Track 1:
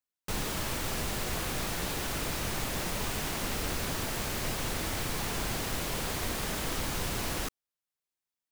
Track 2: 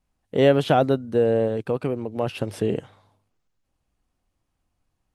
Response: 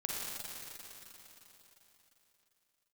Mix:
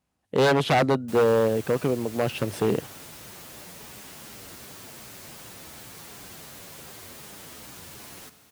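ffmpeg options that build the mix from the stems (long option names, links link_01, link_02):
-filter_complex "[0:a]highshelf=frequency=5600:gain=6,asplit=2[link_01][link_02];[link_02]adelay=8.7,afreqshift=-2.7[link_03];[link_01][link_03]amix=inputs=2:normalize=1,adelay=800,volume=-10.5dB,asplit=2[link_04][link_05];[link_05]volume=-11.5dB[link_06];[1:a]aeval=exprs='0.168*(abs(mod(val(0)/0.168+3,4)-2)-1)':channel_layout=same,volume=1.5dB[link_07];[2:a]atrim=start_sample=2205[link_08];[link_06][link_08]afir=irnorm=-1:irlink=0[link_09];[link_04][link_07][link_09]amix=inputs=3:normalize=0,highpass=91"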